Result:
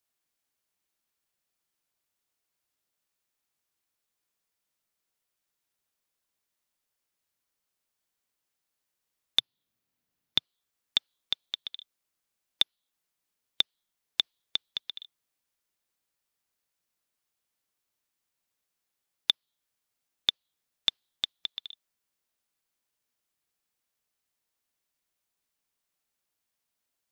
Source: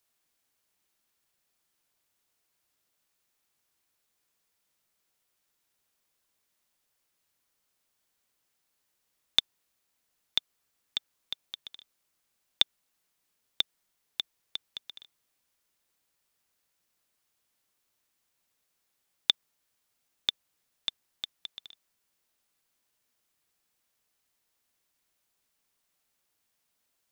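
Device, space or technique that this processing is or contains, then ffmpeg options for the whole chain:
soft clipper into limiter: -filter_complex "[0:a]asoftclip=type=tanh:threshold=0.531,alimiter=limit=0.211:level=0:latency=1:release=371,asplit=3[s0][s1][s2];[s0]afade=t=out:st=9.39:d=0.02[s3];[s1]equalizer=f=125:t=o:w=1:g=11,equalizer=f=250:t=o:w=1:g=7,equalizer=f=8000:t=o:w=1:g=-4,afade=t=in:st=9.39:d=0.02,afade=t=out:st=10.38:d=0.02[s4];[s2]afade=t=in:st=10.38:d=0.02[s5];[s3][s4][s5]amix=inputs=3:normalize=0,afftdn=nr=13:nf=-59,volume=2.24"

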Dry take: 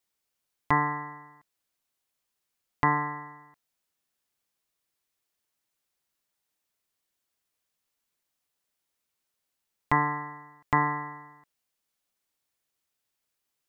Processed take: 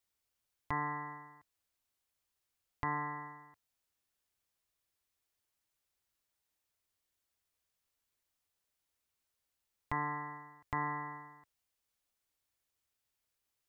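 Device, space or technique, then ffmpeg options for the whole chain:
car stereo with a boomy subwoofer: -af "lowshelf=f=120:t=q:w=1.5:g=6,alimiter=limit=0.126:level=0:latency=1:release=411,volume=0.668"

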